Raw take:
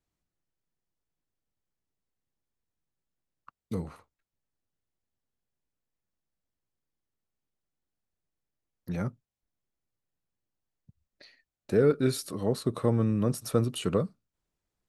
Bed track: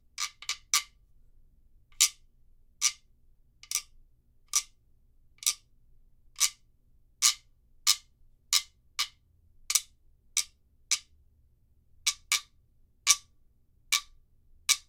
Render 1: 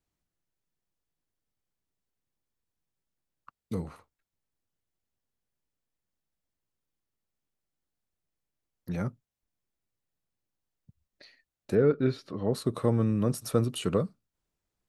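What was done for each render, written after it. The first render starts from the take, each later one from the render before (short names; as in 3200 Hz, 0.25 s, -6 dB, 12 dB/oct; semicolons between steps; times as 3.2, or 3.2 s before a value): 11.75–12.53 air absorption 250 m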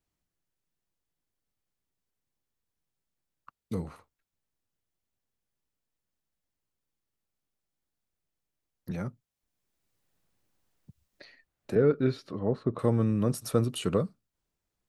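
8.91–11.76 three-band squash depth 40%; 12.39–12.79 LPF 1700 Hz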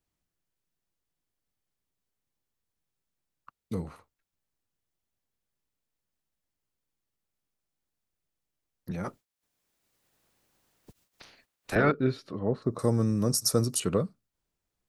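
9.03–11.9 spectral limiter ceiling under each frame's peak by 25 dB; 12.62–13.8 resonant high shelf 4100 Hz +9.5 dB, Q 3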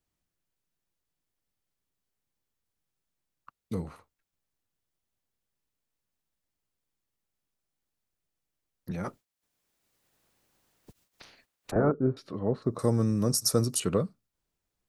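11.71–12.17 LPF 1100 Hz 24 dB/oct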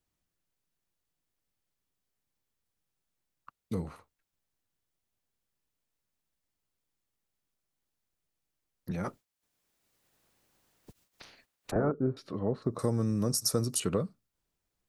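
compressor 2:1, threshold -27 dBFS, peak gain reduction 5 dB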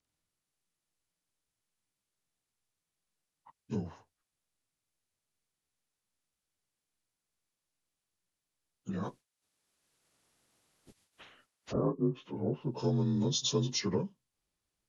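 inharmonic rescaling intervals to 86%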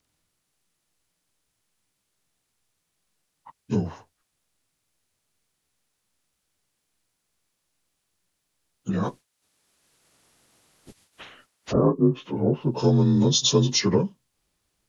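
gain +11 dB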